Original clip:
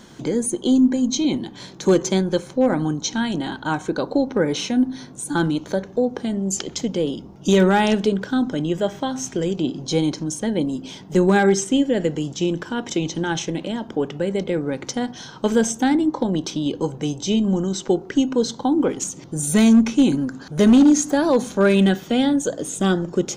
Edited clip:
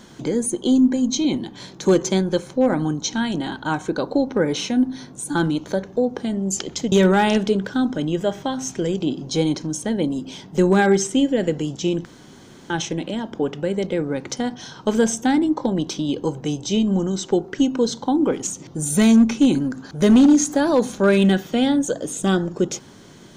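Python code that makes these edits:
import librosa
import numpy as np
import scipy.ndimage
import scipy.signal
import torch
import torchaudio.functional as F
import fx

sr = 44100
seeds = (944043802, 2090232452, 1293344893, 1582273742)

y = fx.edit(x, sr, fx.cut(start_s=6.92, length_s=0.57),
    fx.room_tone_fill(start_s=12.62, length_s=0.65), tone=tone)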